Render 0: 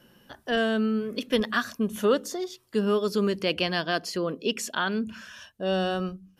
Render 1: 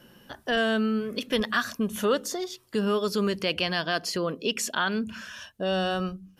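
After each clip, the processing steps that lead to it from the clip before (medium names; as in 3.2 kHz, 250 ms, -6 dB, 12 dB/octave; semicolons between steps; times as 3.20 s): dynamic bell 310 Hz, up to -5 dB, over -35 dBFS, Q 0.77; in parallel at 0 dB: peak limiter -21.5 dBFS, peak gain reduction 9 dB; on the sum: trim -2.5 dB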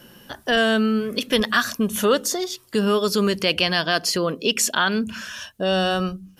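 treble shelf 4.1 kHz +5.5 dB; trim +5.5 dB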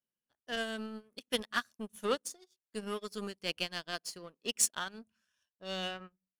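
low-pass sweep 9.9 kHz -> 1.9 kHz, 5.45–6.03 s; power-law waveshaper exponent 1.4; upward expansion 2.5:1, over -37 dBFS; trim -6.5 dB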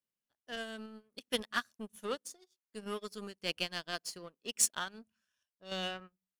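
random-step tremolo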